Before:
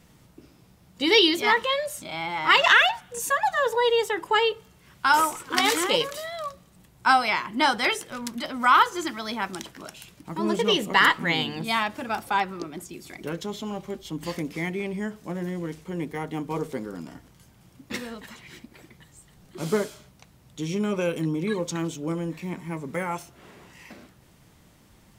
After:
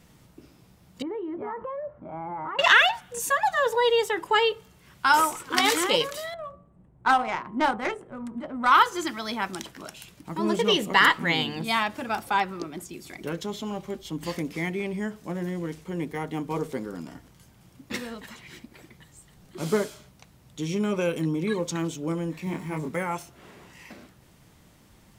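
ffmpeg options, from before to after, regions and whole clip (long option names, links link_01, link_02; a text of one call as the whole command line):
ffmpeg -i in.wav -filter_complex "[0:a]asettb=1/sr,asplit=3[link_01][link_02][link_03];[link_01]atrim=end=1.024[link_04];[link_02]atrim=start=1.02:end=2.59,asetpts=PTS-STARTPTS,afade=type=in:duration=0.004:curve=qsin,afade=type=out:start_time=1.566:duration=0.004:curve=qsin,lowpass=frequency=1300:width=0.5412,lowpass=frequency=1300:width=1.3066,aemphasis=mode=reproduction:type=75kf,acompressor=threshold=-30dB:ratio=8:attack=3.2:release=140:knee=1:detection=peak[link_05];[link_03]atrim=start=2.586[link_06];[link_04][link_05]acrossfade=duration=0.004:curve1=hsin:curve2=qsin[link_07];[link_07][link_06]acrossfade=duration=0.004:curve1=qsin:curve2=hsin,asettb=1/sr,asplit=3[link_08][link_09][link_10];[link_08]atrim=end=6.344[link_11];[link_09]atrim=start=6.34:end=8.72,asetpts=PTS-STARTPTS,afade=type=in:duration=0.004:curve=qsin,afade=type=out:start_time=2.376:duration=0.004:curve=qsin,highshelf=frequency=6700:width_type=q:width=3:gain=10,bandreject=frequency=96.22:width_type=h:width=4,bandreject=frequency=192.44:width_type=h:width=4,bandreject=frequency=288.66:width_type=h:width=4,bandreject=frequency=384.88:width_type=h:width=4,bandreject=frequency=481.1:width_type=h:width=4,bandreject=frequency=577.32:width_type=h:width=4,bandreject=frequency=673.54:width_type=h:width=4,bandreject=frequency=769.76:width_type=h:width=4,bandreject=frequency=865.98:width_type=h:width=4,bandreject=frequency=962.2:width_type=h:width=4,bandreject=frequency=1058.42:width_type=h:width=4,bandreject=frequency=1154.64:width_type=h:width=4,bandreject=frequency=1250.86:width_type=h:width=4,bandreject=frequency=1347.08:width_type=h:width=4,adynamicsmooth=sensitivity=0.5:basefreq=900[link_12];[link_10]atrim=start=8.716[link_13];[link_11][link_12]acrossfade=duration=0.004:curve1=hsin:curve2=qsin[link_14];[link_14][link_13]acrossfade=duration=0.004:curve1=qsin:curve2=hsin,asettb=1/sr,asplit=3[link_15][link_16][link_17];[link_15]atrim=end=22.444[link_18];[link_16]atrim=start=22.44:end=22.89,asetpts=PTS-STARTPTS,afade=type=in:duration=0.004:curve=qsin,afade=type=out:start_time=0.446:duration=0.004:curve=qsin,aeval=exprs='val(0)+0.5*0.00335*sgn(val(0))':channel_layout=same,asplit=2[link_19][link_20];[link_20]adelay=26,volume=-3dB[link_21];[link_19][link_21]amix=inputs=2:normalize=0,atrim=end_sample=19845[link_22];[link_17]atrim=start=22.886[link_23];[link_18][link_22]acrossfade=duration=0.004:curve1=hsin:curve2=qsin[link_24];[link_24][link_23]acrossfade=duration=0.004:curve1=qsin:curve2=hsin" out.wav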